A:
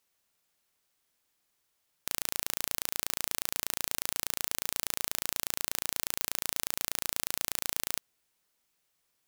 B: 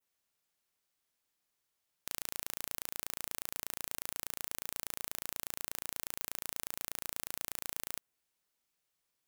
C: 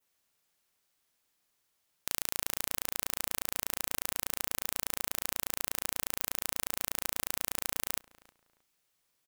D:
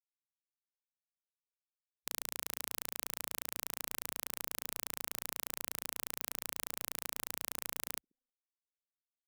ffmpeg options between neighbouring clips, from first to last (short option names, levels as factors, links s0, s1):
-af "adynamicequalizer=threshold=0.00224:dfrequency=4500:dqfactor=0.85:tfrequency=4500:tqfactor=0.85:attack=5:release=100:ratio=0.375:range=2:mode=cutabove:tftype=bell,volume=0.473"
-filter_complex "[0:a]asplit=2[s0][s1];[s1]adelay=314,lowpass=f=2100:p=1,volume=0.112,asplit=2[s2][s3];[s3]adelay=314,lowpass=f=2100:p=1,volume=0.27[s4];[s0][s2][s4]amix=inputs=3:normalize=0,volume=2"
-filter_complex "[0:a]asplit=2[s0][s1];[s1]adelay=1574,volume=0.0447,highshelf=f=4000:g=-35.4[s2];[s0][s2]amix=inputs=2:normalize=0,afwtdn=0.00398,afftfilt=real='re*gte(hypot(re,im),0.000398)':imag='im*gte(hypot(re,im),0.000398)':win_size=1024:overlap=0.75,volume=0.501"